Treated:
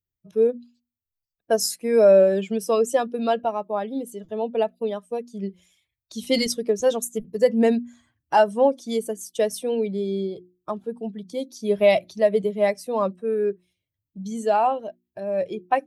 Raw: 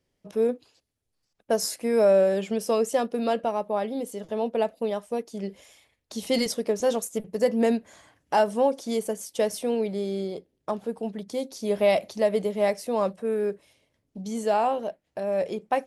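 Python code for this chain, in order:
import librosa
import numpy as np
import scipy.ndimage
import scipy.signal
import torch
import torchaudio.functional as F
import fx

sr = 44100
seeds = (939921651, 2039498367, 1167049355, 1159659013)

y = fx.bin_expand(x, sr, power=1.5)
y = fx.hum_notches(y, sr, base_hz=60, count=6)
y = F.gain(torch.from_numpy(y), 6.0).numpy()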